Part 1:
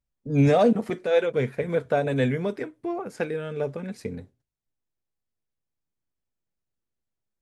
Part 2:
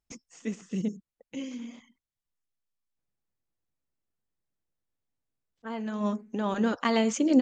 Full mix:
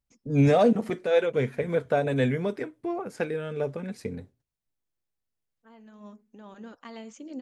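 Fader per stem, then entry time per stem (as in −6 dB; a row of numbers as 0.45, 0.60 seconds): −1.0, −17.5 decibels; 0.00, 0.00 seconds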